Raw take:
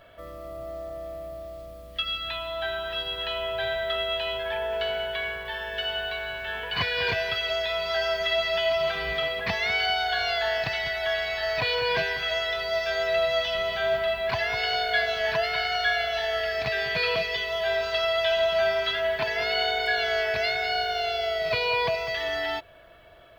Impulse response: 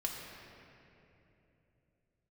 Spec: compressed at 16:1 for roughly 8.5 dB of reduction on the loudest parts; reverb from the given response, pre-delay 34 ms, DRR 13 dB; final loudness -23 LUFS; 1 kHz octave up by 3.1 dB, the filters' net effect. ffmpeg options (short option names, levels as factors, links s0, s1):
-filter_complex "[0:a]equalizer=f=1000:t=o:g=5,acompressor=threshold=0.0447:ratio=16,asplit=2[s0][s1];[1:a]atrim=start_sample=2205,adelay=34[s2];[s1][s2]afir=irnorm=-1:irlink=0,volume=0.178[s3];[s0][s3]amix=inputs=2:normalize=0,volume=2.24"